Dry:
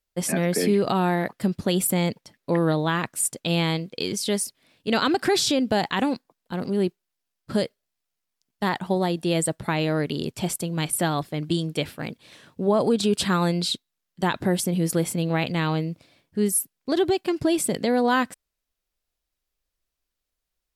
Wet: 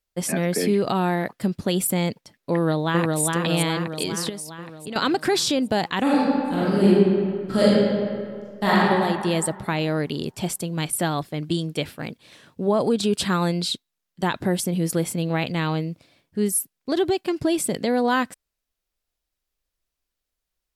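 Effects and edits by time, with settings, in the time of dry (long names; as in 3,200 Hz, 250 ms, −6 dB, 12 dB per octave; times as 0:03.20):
0:02.53–0:03.21: delay throw 410 ms, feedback 60%, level −2 dB
0:04.29–0:04.96: downward compressor 10 to 1, threshold −29 dBFS
0:06.02–0:08.80: thrown reverb, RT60 2.1 s, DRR −8.5 dB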